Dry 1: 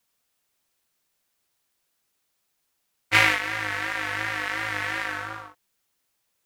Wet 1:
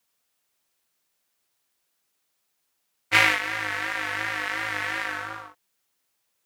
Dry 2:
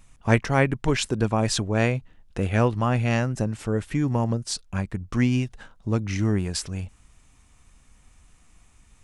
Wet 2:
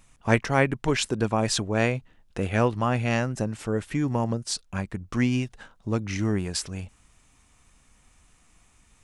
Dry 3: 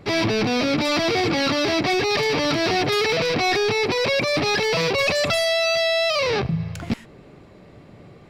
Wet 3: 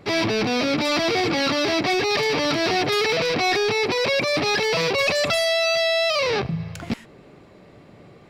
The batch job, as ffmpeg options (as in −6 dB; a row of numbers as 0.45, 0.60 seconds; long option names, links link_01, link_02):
-af "lowshelf=frequency=140:gain=-6.5"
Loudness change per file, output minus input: 0.0, −1.5, 0.0 LU